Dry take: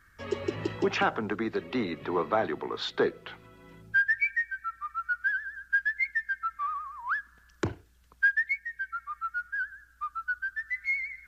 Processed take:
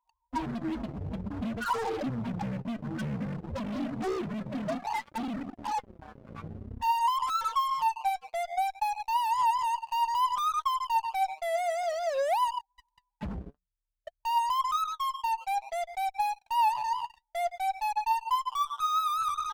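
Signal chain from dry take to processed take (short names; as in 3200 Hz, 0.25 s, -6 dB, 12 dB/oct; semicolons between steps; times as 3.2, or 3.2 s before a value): speed mistake 78 rpm record played at 45 rpm; on a send: echo 0.125 s -18 dB; on the sum: limiter -25 dBFS, peak gain reduction 11 dB; steep low-pass 1600 Hz 36 dB/oct; loudest bins only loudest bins 4; low shelf 180 Hz -5.5 dB; compressor 3:1, threshold -49 dBFS, peak gain reduction 15 dB; HPF 47 Hz 12 dB/oct; notches 60/120/180 Hz; in parallel at -4.5 dB: fuzz box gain 55 dB, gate -60 dBFS; on the sum: flange 0.56 Hz, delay 1.5 ms, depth 6.4 ms, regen +56%; dynamic EQ 940 Hz, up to +5 dB, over -30 dBFS, Q 1.3; gain -8.5 dB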